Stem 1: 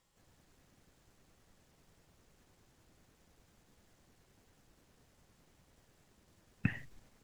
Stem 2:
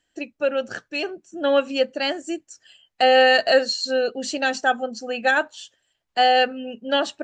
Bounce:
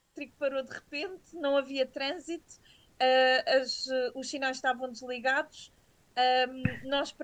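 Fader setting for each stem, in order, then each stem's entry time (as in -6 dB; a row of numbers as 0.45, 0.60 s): +3.0, -9.0 dB; 0.00, 0.00 s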